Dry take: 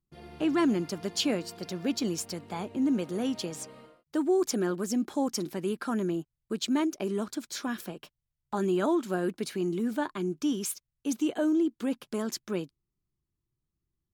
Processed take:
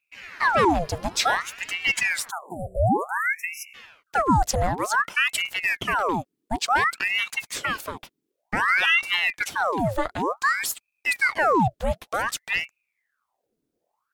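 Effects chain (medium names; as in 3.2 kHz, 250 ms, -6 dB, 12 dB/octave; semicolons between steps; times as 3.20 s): spectral selection erased 2.30–3.75 s, 450–7500 Hz; ring modulator with a swept carrier 1.4 kHz, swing 80%, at 0.55 Hz; trim +8.5 dB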